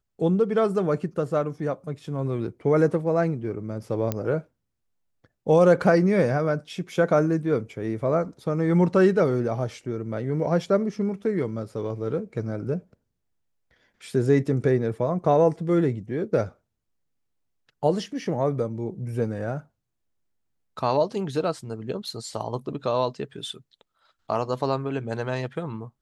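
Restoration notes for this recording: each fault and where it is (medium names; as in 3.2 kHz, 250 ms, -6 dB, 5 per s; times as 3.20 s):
4.12 s: pop -12 dBFS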